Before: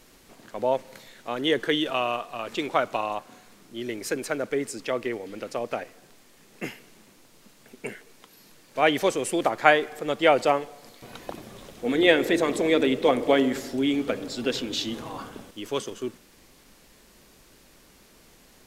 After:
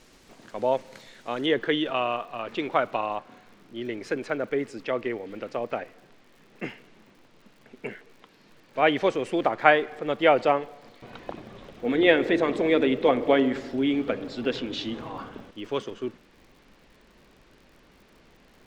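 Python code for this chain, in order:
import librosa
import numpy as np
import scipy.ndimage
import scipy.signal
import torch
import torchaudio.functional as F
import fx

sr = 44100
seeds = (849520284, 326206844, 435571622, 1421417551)

y = fx.lowpass(x, sr, hz=fx.steps((0.0, 7600.0), (1.46, 3200.0)), slope=12)
y = fx.dmg_crackle(y, sr, seeds[0], per_s=89.0, level_db=-48.0)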